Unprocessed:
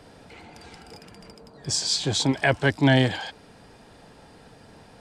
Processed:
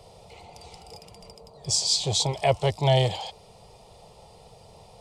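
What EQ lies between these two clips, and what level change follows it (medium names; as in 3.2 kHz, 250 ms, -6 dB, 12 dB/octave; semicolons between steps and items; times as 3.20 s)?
static phaser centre 660 Hz, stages 4; +2.5 dB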